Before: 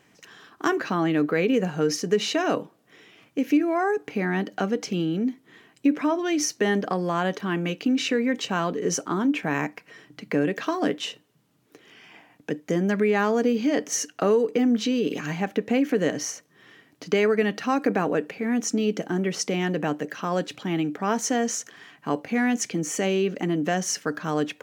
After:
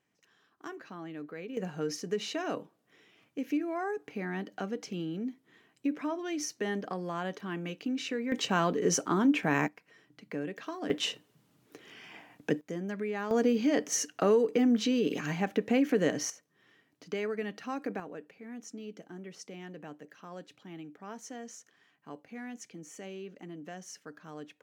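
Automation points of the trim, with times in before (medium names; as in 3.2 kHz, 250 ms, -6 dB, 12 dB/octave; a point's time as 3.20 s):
-19.5 dB
from 1.57 s -10.5 dB
from 8.32 s -2 dB
from 9.68 s -13 dB
from 10.90 s -0.5 dB
from 12.61 s -13 dB
from 13.31 s -4 dB
from 16.30 s -13 dB
from 18.00 s -19.5 dB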